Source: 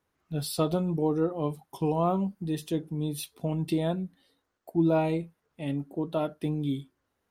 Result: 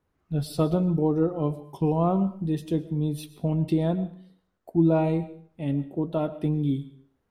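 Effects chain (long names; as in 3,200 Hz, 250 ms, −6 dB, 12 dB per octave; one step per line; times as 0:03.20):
spectral tilt −2 dB per octave
on a send: convolution reverb RT60 0.50 s, pre-delay 75 ms, DRR 15 dB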